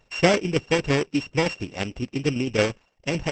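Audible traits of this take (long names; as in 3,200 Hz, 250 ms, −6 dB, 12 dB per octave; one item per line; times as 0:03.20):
a buzz of ramps at a fixed pitch in blocks of 16 samples
tremolo saw down 8.9 Hz, depth 50%
Opus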